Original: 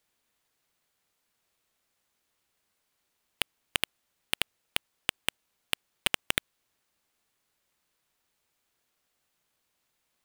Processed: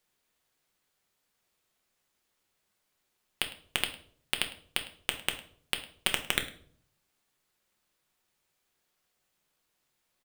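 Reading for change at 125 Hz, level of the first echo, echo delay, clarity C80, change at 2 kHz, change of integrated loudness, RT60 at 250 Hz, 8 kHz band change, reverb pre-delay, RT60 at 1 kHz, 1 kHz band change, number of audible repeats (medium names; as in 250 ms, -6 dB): +0.5 dB, -19.5 dB, 105 ms, 15.0 dB, -0.5 dB, -0.5 dB, 0.75 s, -0.5 dB, 5 ms, 0.45 s, -0.5 dB, 1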